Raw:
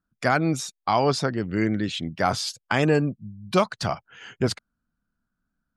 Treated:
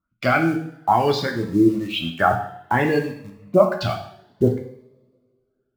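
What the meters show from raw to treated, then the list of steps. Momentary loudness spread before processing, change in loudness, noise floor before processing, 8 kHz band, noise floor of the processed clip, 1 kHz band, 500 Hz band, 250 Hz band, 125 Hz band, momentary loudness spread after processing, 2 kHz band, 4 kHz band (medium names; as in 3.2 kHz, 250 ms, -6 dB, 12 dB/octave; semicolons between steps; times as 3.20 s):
8 LU, +4.0 dB, -82 dBFS, no reading, -73 dBFS, +4.5 dB, +5.0 dB, +4.5 dB, +1.5 dB, 10 LU, +3.5 dB, +0.5 dB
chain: reverb removal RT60 1.2 s; LFO low-pass sine 1.1 Hz 300–3500 Hz; in parallel at -9 dB: bit crusher 6-bit; on the sum: two-slope reverb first 0.64 s, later 2.2 s, from -26 dB, DRR 1.5 dB; Shepard-style phaser rising 0.58 Hz; trim -1 dB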